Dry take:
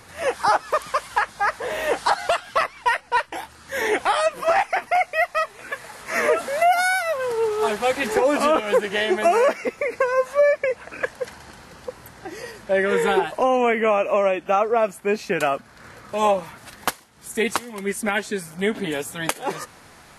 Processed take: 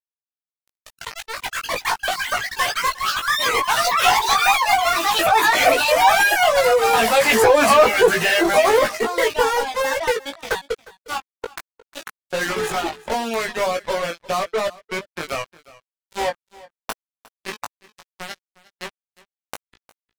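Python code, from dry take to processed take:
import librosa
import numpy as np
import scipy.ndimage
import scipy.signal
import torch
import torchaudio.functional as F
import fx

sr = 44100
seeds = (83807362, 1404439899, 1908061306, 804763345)

p1 = fx.fade_in_head(x, sr, length_s=2.16)
p2 = fx.doppler_pass(p1, sr, speed_mps=32, closest_m=18.0, pass_at_s=7.62)
p3 = scipy.signal.sosfilt(scipy.signal.butter(2, 170.0, 'highpass', fs=sr, output='sos'), p2)
p4 = fx.hum_notches(p3, sr, base_hz=50, count=8)
p5 = fx.dynamic_eq(p4, sr, hz=310.0, q=1.7, threshold_db=-43.0, ratio=4.0, max_db=-7)
p6 = fx.fuzz(p5, sr, gain_db=46.0, gate_db=-41.0)
p7 = p5 + F.gain(torch.from_numpy(p6), -6.0).numpy()
p8 = fx.echo_pitch(p7, sr, ms=301, semitones=7, count=2, db_per_echo=-3.0)
p9 = np.sign(p8) * np.maximum(np.abs(p8) - 10.0 ** (-39.0 / 20.0), 0.0)
p10 = fx.dereverb_blind(p9, sr, rt60_s=1.1)
p11 = fx.doubler(p10, sr, ms=18.0, db=-4.0)
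p12 = p11 + fx.echo_single(p11, sr, ms=357, db=-21.0, dry=0)
y = F.gain(torch.from_numpy(p12), 2.0).numpy()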